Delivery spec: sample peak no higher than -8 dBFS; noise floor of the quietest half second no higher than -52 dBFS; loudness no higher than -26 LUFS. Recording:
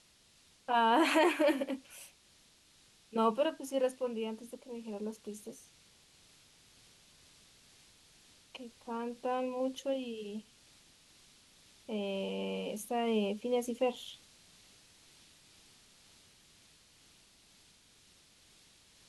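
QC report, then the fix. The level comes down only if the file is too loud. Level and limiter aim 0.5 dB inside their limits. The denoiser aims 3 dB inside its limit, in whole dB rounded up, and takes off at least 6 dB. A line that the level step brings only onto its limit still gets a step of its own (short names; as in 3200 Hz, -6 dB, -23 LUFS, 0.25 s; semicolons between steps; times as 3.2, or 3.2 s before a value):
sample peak -16.0 dBFS: OK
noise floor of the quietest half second -65 dBFS: OK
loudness -34.0 LUFS: OK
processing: none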